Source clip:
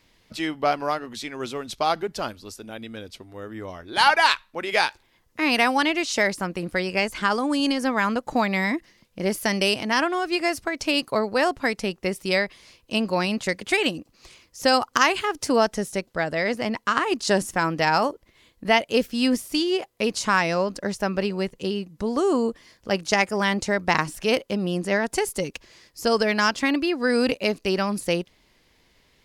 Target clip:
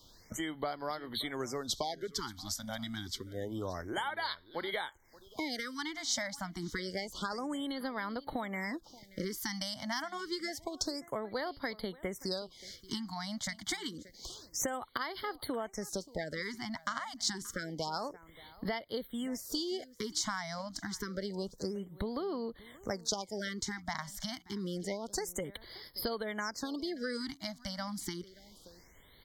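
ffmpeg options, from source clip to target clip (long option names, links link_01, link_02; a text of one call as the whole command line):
ffmpeg -i in.wav -filter_complex "[0:a]acompressor=threshold=-33dB:ratio=12,asuperstop=centerf=2600:order=8:qfactor=3.4,bass=frequency=250:gain=-4,treble=frequency=4000:gain=11,acrossover=split=140[link_01][link_02];[link_01]acontrast=73[link_03];[link_03][link_02]amix=inputs=2:normalize=0,equalizer=frequency=10000:width_type=o:width=0.56:gain=-15,asplit=2[link_04][link_05];[link_05]aecho=0:1:579:0.0944[link_06];[link_04][link_06]amix=inputs=2:normalize=0,afftfilt=real='re*(1-between(b*sr/1024,390*pow(7600/390,0.5+0.5*sin(2*PI*0.28*pts/sr))/1.41,390*pow(7600/390,0.5+0.5*sin(2*PI*0.28*pts/sr))*1.41))':imag='im*(1-between(b*sr/1024,390*pow(7600/390,0.5+0.5*sin(2*PI*0.28*pts/sr))/1.41,390*pow(7600/390,0.5+0.5*sin(2*PI*0.28*pts/sr))*1.41))':win_size=1024:overlap=0.75" out.wav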